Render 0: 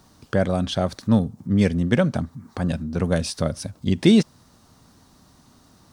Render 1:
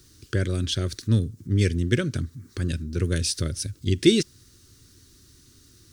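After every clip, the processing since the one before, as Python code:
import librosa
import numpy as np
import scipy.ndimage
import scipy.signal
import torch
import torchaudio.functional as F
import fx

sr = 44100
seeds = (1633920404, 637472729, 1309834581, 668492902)

y = fx.curve_eq(x, sr, hz=(110.0, 200.0, 360.0, 780.0, 1500.0, 6400.0), db=(0, -14, 0, -29, -6, 2))
y = y * librosa.db_to_amplitude(3.0)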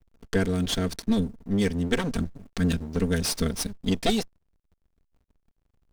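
y = fx.lower_of_two(x, sr, delay_ms=4.4)
y = fx.backlash(y, sr, play_db=-41.0)
y = fx.rider(y, sr, range_db=4, speed_s=0.5)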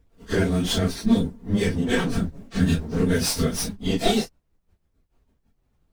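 y = fx.phase_scramble(x, sr, seeds[0], window_ms=100)
y = y * librosa.db_to_amplitude(3.5)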